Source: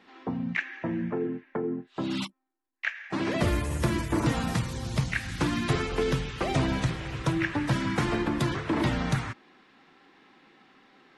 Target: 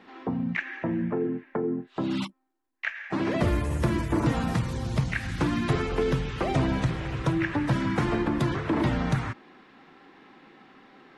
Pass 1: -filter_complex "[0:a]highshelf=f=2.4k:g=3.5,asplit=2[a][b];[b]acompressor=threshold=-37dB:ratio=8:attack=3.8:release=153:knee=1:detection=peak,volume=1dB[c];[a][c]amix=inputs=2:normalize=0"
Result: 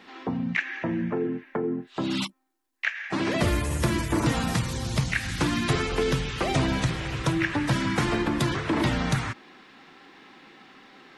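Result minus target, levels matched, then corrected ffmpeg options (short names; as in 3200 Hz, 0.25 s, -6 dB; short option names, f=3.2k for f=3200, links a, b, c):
4000 Hz band +6.5 dB
-filter_complex "[0:a]highshelf=f=2.4k:g=-8,asplit=2[a][b];[b]acompressor=threshold=-37dB:ratio=8:attack=3.8:release=153:knee=1:detection=peak,volume=1dB[c];[a][c]amix=inputs=2:normalize=0"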